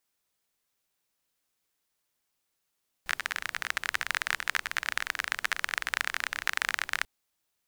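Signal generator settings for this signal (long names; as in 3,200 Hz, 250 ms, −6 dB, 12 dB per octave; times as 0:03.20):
rain-like ticks over hiss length 3.99 s, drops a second 28, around 1,700 Hz, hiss −22 dB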